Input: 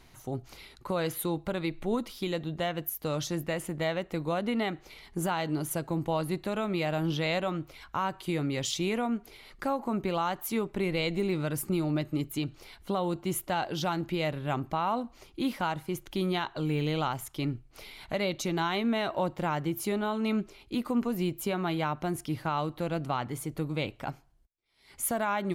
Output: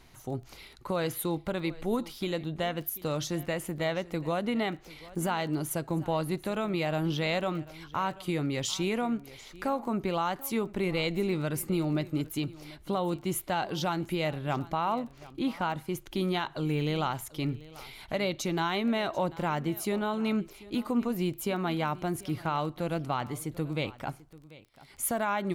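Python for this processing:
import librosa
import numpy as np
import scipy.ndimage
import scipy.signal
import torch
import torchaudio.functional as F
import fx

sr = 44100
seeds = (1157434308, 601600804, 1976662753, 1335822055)

p1 = fx.lowpass(x, sr, hz=4000.0, slope=6, at=(14.94, 15.74))
p2 = fx.dmg_crackle(p1, sr, seeds[0], per_s=16.0, level_db=-41.0)
y = p2 + fx.echo_single(p2, sr, ms=740, db=-19.5, dry=0)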